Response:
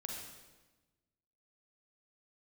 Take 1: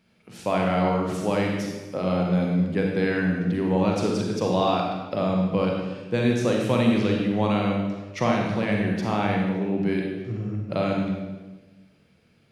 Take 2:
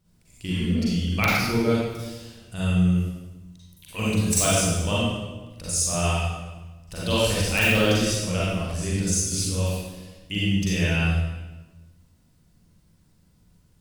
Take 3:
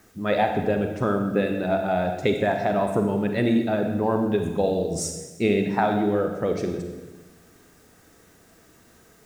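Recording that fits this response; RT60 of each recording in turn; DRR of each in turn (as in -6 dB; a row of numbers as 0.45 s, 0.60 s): 1; 1.2 s, 1.2 s, 1.2 s; -0.5 dB, -8.0 dB, 4.5 dB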